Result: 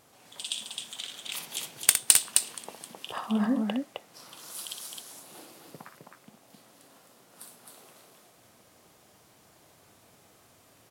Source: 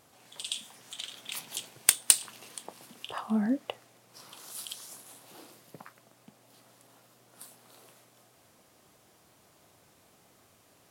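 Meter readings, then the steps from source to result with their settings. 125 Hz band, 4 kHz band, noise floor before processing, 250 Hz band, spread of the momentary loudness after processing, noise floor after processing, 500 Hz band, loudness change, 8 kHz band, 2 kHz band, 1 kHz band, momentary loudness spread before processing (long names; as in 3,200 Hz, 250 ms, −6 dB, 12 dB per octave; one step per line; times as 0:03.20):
+2.5 dB, +3.0 dB, −63 dBFS, +2.5 dB, 23 LU, −60 dBFS, +3.0 dB, +2.5 dB, +3.0 dB, +3.0 dB, +3.0 dB, 24 LU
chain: loudspeakers that aren't time-aligned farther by 21 metres −8 dB, 90 metres −4 dB
level +1 dB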